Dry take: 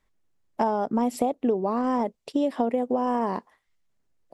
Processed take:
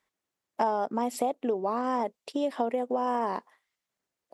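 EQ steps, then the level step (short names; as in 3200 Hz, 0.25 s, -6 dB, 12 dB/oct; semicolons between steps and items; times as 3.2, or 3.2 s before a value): HPF 520 Hz 6 dB/oct; 0.0 dB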